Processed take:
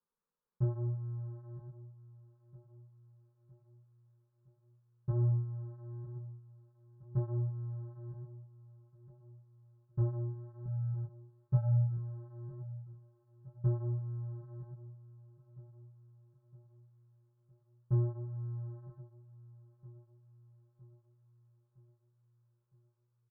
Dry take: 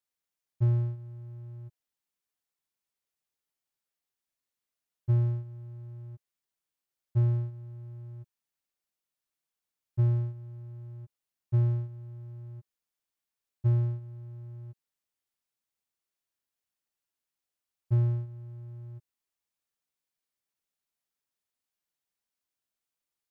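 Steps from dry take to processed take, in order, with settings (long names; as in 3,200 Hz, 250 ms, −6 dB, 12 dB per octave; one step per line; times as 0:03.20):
adaptive Wiener filter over 15 samples
treble cut that deepens with the level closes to 810 Hz, closed at −25.5 dBFS
0:10.65–0:11.97: comb filter 7 ms, depth 99%
in parallel at +0.5 dB: downward compressor, threshold −35 dBFS, peak gain reduction 16.5 dB
on the sum: chorus effect 0.92 Hz, delay 17.5 ms, depth 5.1 ms
phaser with its sweep stopped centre 460 Hz, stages 8
repeating echo 962 ms, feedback 55%, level −16.5 dB
one half of a high-frequency compander decoder only
level +5.5 dB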